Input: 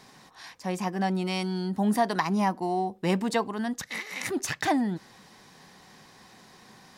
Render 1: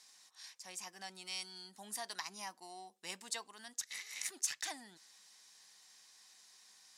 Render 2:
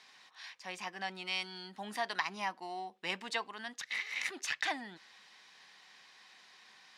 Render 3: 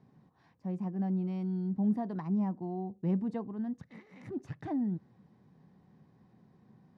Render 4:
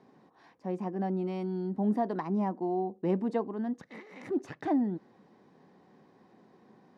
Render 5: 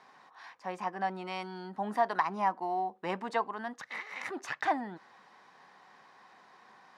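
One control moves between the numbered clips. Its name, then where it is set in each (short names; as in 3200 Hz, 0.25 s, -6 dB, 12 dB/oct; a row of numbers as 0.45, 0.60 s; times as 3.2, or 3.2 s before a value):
band-pass, frequency: 7800, 2800, 130, 330, 1100 Hz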